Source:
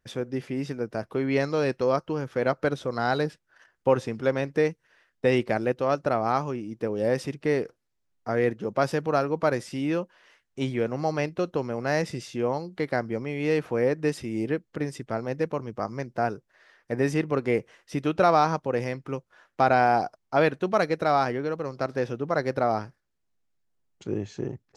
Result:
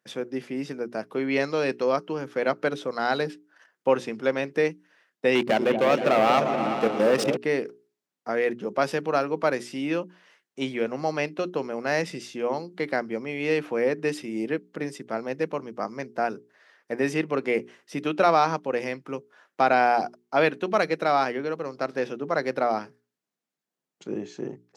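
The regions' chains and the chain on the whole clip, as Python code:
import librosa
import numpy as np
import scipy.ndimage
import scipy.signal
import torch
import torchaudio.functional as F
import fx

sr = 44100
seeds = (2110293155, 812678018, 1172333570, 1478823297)

y = fx.chain(x, sr, fx.level_steps(step_db=14),
    fx.leveller(passes=3),
    fx.echo_opening(ms=118, hz=200, octaves=2, feedback_pct=70, wet_db=-3), at=(5.35, 7.37))
y = scipy.signal.sosfilt(scipy.signal.butter(4, 170.0, 'highpass', fs=sr, output='sos'), y)
y = fx.hum_notches(y, sr, base_hz=60, count=7)
y = fx.dynamic_eq(y, sr, hz=2700.0, q=1.3, threshold_db=-45.0, ratio=4.0, max_db=5)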